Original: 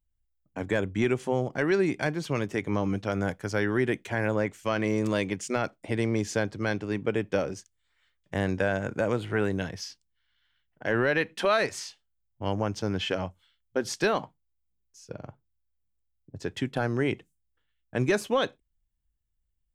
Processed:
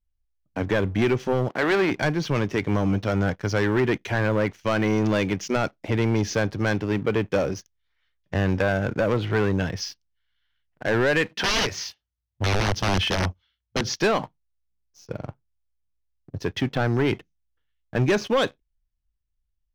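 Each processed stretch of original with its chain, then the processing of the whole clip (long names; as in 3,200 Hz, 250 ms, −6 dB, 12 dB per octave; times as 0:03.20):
0:01.48–0:01.90: compressing power law on the bin magnitudes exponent 0.64 + band-pass filter 240–2,400 Hz
0:11.28–0:13.98: high-pass filter 42 Hz + low-shelf EQ 83 Hz +11 dB + wrap-around overflow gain 22.5 dB
whole clip: elliptic low-pass filter 6,100 Hz; low-shelf EQ 81 Hz +7.5 dB; leveller curve on the samples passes 2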